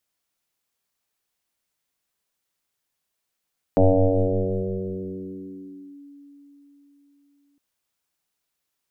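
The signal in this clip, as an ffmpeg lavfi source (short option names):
-f lavfi -i "aevalsrc='0.266*pow(10,-3*t/4.49)*sin(2*PI*284*t+4.2*clip(1-t/2.22,0,1)*sin(2*PI*0.33*284*t))':d=3.81:s=44100"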